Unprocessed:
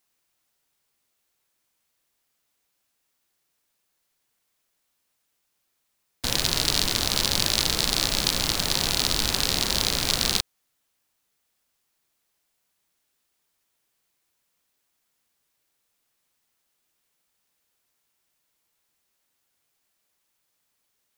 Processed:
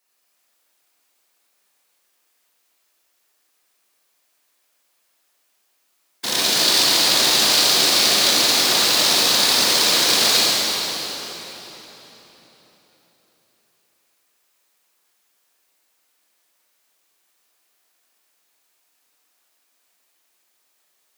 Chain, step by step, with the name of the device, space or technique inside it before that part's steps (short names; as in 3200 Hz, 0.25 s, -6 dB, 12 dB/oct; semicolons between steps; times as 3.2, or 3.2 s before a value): whispering ghost (whisperiser; HPF 340 Hz 12 dB/oct; reverb RT60 4.0 s, pre-delay 21 ms, DRR -6.5 dB); gain +2 dB